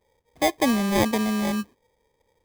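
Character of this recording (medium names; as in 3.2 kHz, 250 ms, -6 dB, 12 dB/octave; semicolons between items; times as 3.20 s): aliases and images of a low sample rate 1.4 kHz, jitter 0%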